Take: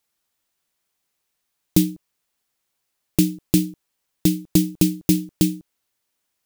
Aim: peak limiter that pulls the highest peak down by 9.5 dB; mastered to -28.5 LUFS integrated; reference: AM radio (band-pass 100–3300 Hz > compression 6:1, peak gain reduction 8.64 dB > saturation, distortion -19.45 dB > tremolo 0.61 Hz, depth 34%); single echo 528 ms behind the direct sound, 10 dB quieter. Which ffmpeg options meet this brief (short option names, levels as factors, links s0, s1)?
-af "alimiter=limit=0.251:level=0:latency=1,highpass=100,lowpass=3300,aecho=1:1:528:0.316,acompressor=threshold=0.0501:ratio=6,asoftclip=threshold=0.0891,tremolo=f=0.61:d=0.34,volume=2.51"